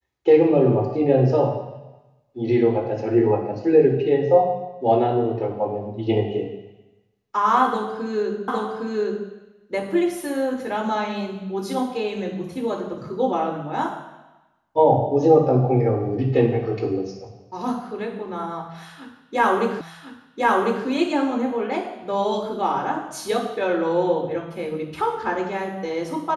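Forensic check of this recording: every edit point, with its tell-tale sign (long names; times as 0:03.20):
0:08.48: the same again, the last 0.81 s
0:19.81: the same again, the last 1.05 s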